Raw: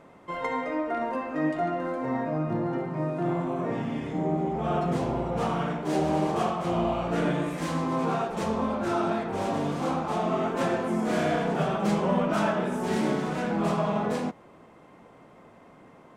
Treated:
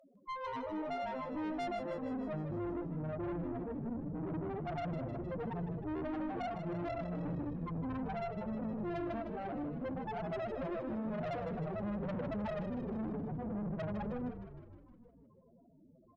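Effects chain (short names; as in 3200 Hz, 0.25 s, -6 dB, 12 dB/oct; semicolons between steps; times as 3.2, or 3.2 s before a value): loudest bins only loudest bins 2; tube stage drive 38 dB, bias 0.65; frequency-shifting echo 0.155 s, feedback 62%, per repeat -51 Hz, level -9 dB; gain +1.5 dB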